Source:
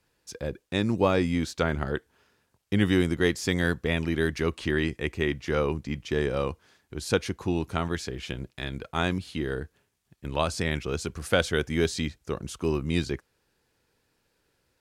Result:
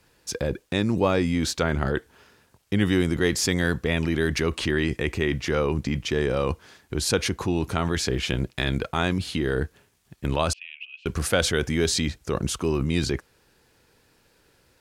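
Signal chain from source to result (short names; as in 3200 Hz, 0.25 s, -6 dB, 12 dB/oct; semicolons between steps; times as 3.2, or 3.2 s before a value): in parallel at +1 dB: negative-ratio compressor -34 dBFS, ratio -1; 10.53–11.06 on the sum: Butterworth band-pass 2700 Hz, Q 5.9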